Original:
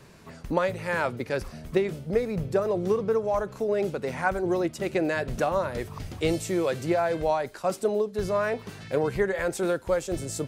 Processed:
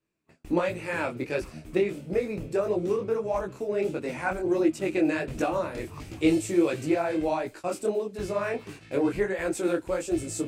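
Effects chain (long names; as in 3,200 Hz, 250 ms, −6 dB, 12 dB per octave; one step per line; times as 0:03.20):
thirty-one-band graphic EQ 315 Hz +12 dB, 2,500 Hz +8 dB, 8,000 Hz +6 dB
noise gate −39 dBFS, range −30 dB
micro pitch shift up and down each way 51 cents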